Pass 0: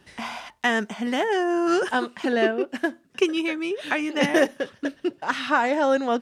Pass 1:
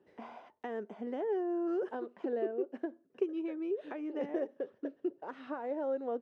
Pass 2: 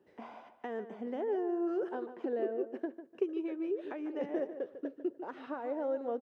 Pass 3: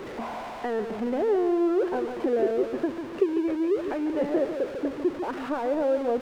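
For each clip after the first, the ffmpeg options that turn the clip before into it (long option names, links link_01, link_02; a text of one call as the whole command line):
ffmpeg -i in.wav -af "acompressor=threshold=-25dB:ratio=3,bandpass=frequency=430:width_type=q:width=2.1:csg=0,volume=-3.5dB" out.wav
ffmpeg -i in.wav -filter_complex "[0:a]asplit=2[link_01][link_02];[link_02]adelay=148,lowpass=frequency=2700:poles=1,volume=-11dB,asplit=2[link_03][link_04];[link_04]adelay=148,lowpass=frequency=2700:poles=1,volume=0.25,asplit=2[link_05][link_06];[link_06]adelay=148,lowpass=frequency=2700:poles=1,volume=0.25[link_07];[link_01][link_03][link_05][link_07]amix=inputs=4:normalize=0" out.wav
ffmpeg -i in.wav -af "aeval=exprs='val(0)+0.5*0.01*sgn(val(0))':channel_layout=same,aemphasis=mode=reproduction:type=75kf,volume=8.5dB" out.wav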